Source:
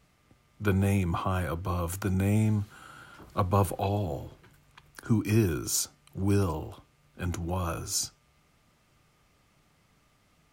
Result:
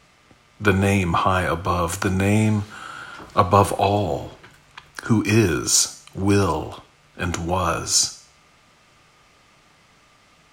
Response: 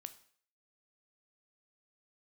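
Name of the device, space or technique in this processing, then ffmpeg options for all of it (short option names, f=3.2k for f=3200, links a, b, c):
filtered reverb send: -filter_complex "[0:a]asplit=2[a][b];[b]highpass=f=600:p=1,lowpass=8.7k[c];[1:a]atrim=start_sample=2205[d];[c][d]afir=irnorm=-1:irlink=0,volume=12dB[e];[a][e]amix=inputs=2:normalize=0,volume=4dB"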